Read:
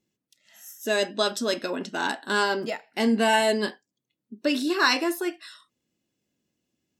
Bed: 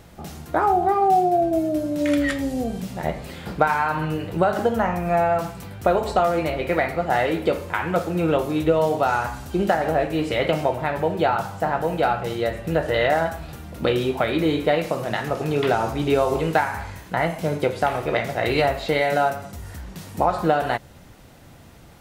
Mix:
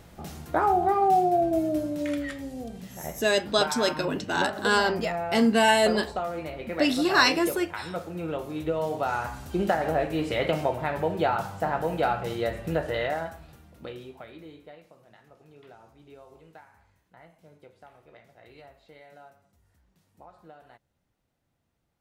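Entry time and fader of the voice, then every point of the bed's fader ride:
2.35 s, +1.0 dB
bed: 1.79 s -3.5 dB
2.28 s -11.5 dB
8.35 s -11.5 dB
9.55 s -4.5 dB
12.68 s -4.5 dB
14.93 s -30.5 dB

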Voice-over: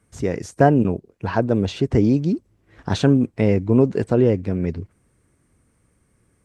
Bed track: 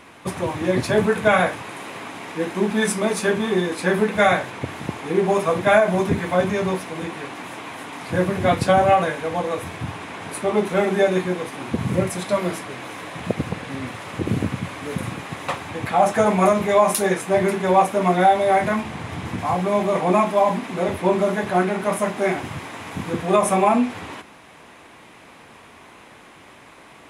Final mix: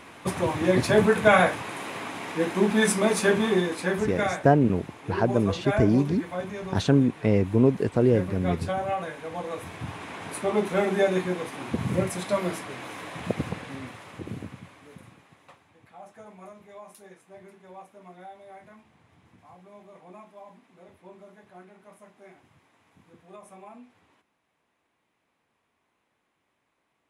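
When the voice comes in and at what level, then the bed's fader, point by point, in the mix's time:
3.85 s, -4.0 dB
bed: 3.45 s -1 dB
4.44 s -13 dB
8.92 s -13 dB
10.09 s -4.5 dB
13.45 s -4.5 dB
15.77 s -29.5 dB

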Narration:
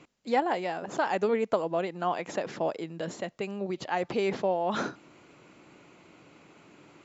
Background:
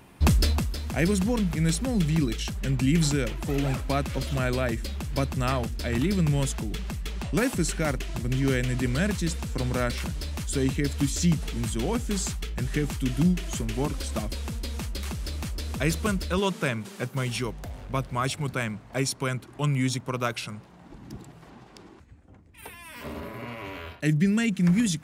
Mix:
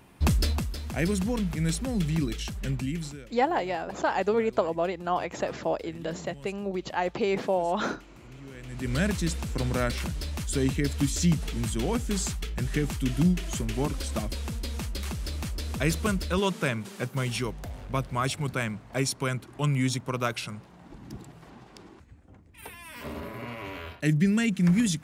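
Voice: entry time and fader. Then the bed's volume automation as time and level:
3.05 s, +1.5 dB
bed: 2.70 s -3 dB
3.32 s -21 dB
8.53 s -21 dB
8.95 s -0.5 dB

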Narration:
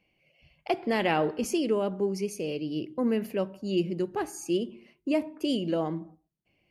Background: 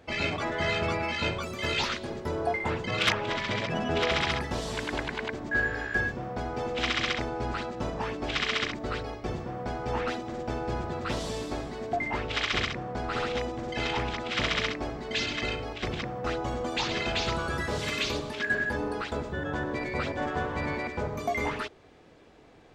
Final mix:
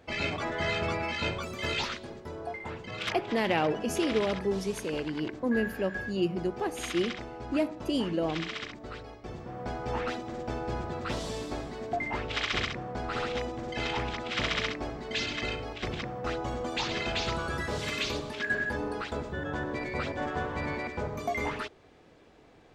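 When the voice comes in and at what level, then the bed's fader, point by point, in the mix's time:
2.45 s, -1.5 dB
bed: 1.72 s -2 dB
2.26 s -9 dB
9.24 s -9 dB
9.67 s -2 dB

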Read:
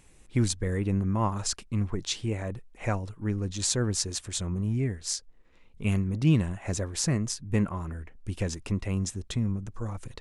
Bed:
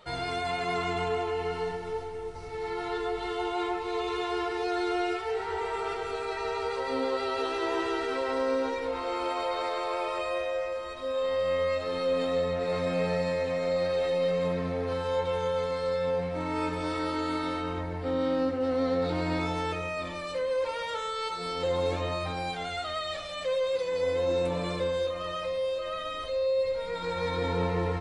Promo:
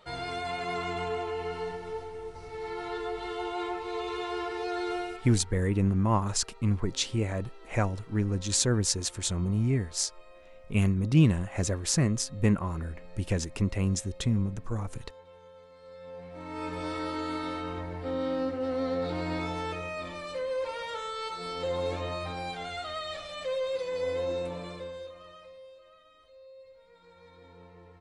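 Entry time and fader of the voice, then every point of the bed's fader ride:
4.90 s, +1.5 dB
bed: 4.94 s -3 dB
5.61 s -23.5 dB
15.72 s -23.5 dB
16.78 s -3 dB
24.19 s -3 dB
26.04 s -24.5 dB

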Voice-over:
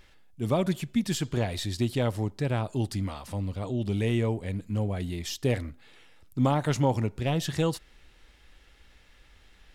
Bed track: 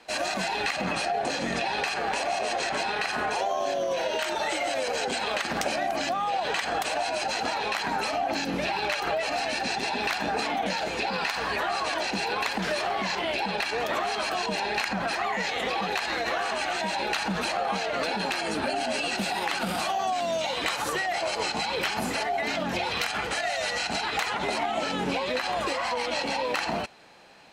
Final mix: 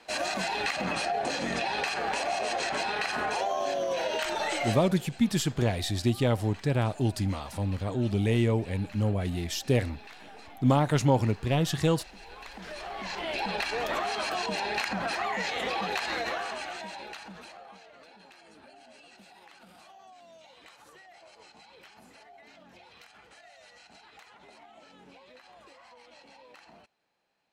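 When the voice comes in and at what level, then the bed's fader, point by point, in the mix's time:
4.25 s, +1.5 dB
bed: 4.70 s -2 dB
4.95 s -21.5 dB
12.16 s -21.5 dB
13.44 s -2.5 dB
16.19 s -2.5 dB
17.99 s -25.5 dB

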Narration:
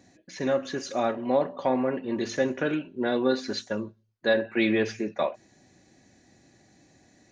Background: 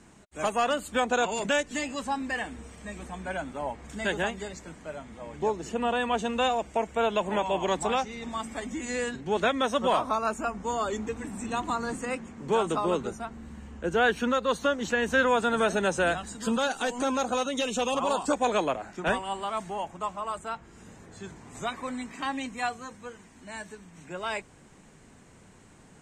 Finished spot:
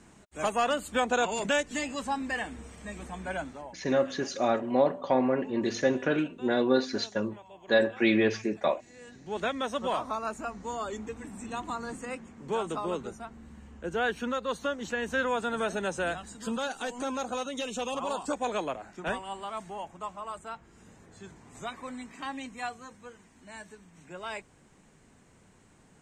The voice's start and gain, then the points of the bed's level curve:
3.45 s, 0.0 dB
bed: 3.42 s -1 dB
3.94 s -23 dB
8.92 s -23 dB
9.39 s -5.5 dB

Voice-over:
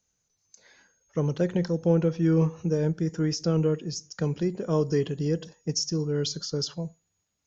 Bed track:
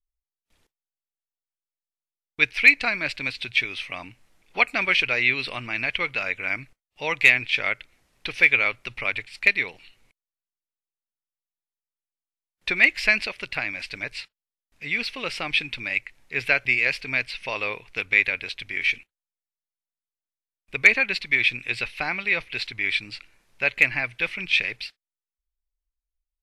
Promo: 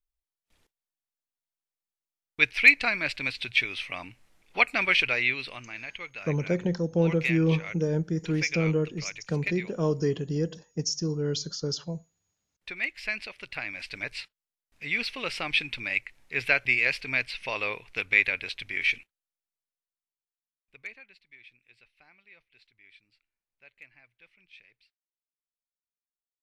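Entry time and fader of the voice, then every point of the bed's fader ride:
5.10 s, -1.5 dB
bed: 5.07 s -2 dB
5.87 s -13.5 dB
12.93 s -13.5 dB
14.07 s -2.5 dB
19.59 s -2.5 dB
21.20 s -32 dB

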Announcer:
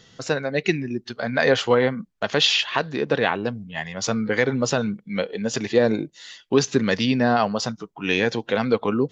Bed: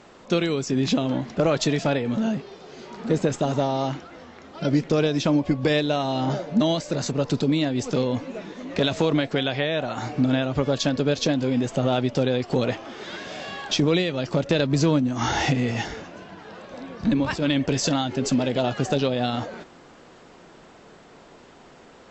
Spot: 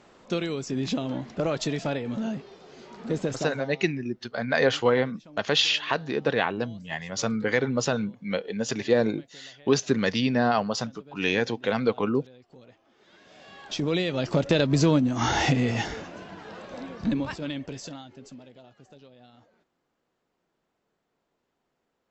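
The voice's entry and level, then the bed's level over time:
3.15 s, -3.5 dB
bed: 3.38 s -6 dB
3.90 s -28.5 dB
12.77 s -28.5 dB
14.16 s -0.5 dB
16.85 s -0.5 dB
18.69 s -29 dB

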